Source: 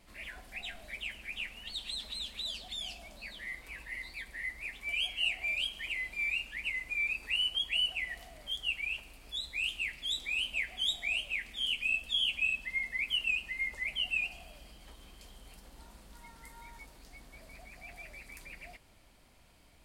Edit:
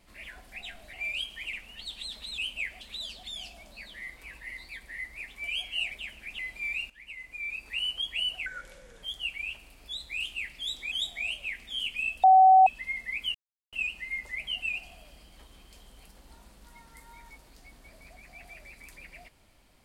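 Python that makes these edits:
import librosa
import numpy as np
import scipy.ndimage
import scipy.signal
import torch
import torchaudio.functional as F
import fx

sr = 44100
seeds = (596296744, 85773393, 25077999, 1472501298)

y = fx.edit(x, sr, fx.swap(start_s=0.93, length_s=0.48, other_s=5.36, other_length_s=0.6),
    fx.fade_in_from(start_s=6.47, length_s=0.98, floor_db=-13.5),
    fx.speed_span(start_s=8.03, length_s=0.43, speed=0.76),
    fx.move(start_s=10.35, length_s=0.43, to_s=2.26),
    fx.bleep(start_s=12.1, length_s=0.43, hz=757.0, db=-13.0),
    fx.insert_silence(at_s=13.21, length_s=0.38), tone=tone)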